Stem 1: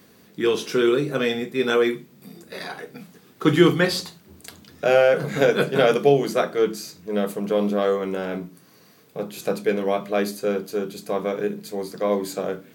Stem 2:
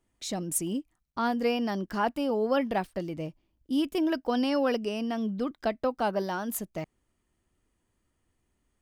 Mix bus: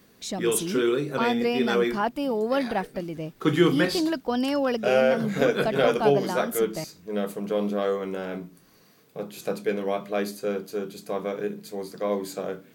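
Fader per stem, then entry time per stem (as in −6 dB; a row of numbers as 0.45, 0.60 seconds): −4.5, +1.5 decibels; 0.00, 0.00 seconds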